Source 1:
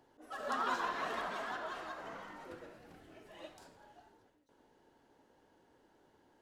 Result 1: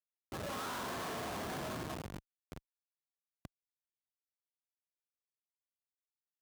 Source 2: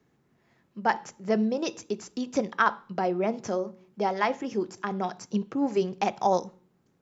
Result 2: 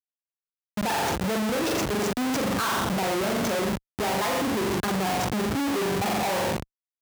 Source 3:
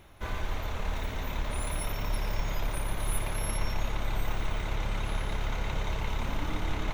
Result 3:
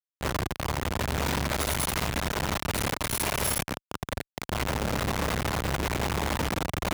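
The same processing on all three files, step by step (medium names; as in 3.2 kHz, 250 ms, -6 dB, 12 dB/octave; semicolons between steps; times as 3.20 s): treble shelf 11 kHz +10.5 dB; flutter echo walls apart 7.3 m, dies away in 0.57 s; Schmitt trigger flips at -38 dBFS; high-pass 76 Hz 12 dB/octave; trim +2 dB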